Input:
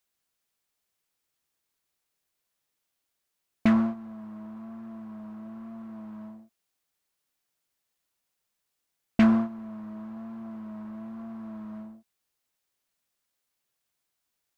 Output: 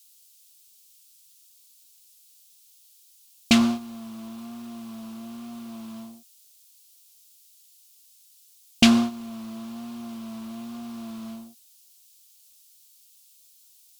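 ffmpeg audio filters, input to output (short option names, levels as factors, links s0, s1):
-af "aexciter=amount=10.3:drive=5:freq=2600,asetrate=45938,aresample=44100,volume=1.33"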